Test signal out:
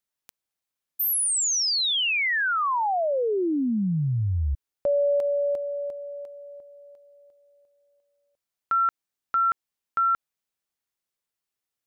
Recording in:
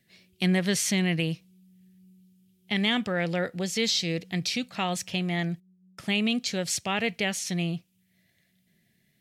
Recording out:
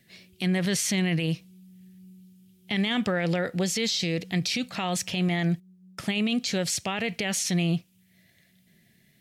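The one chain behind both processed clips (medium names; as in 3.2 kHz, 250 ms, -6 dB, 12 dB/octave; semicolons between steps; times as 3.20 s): peak limiter -25 dBFS; trim +6.5 dB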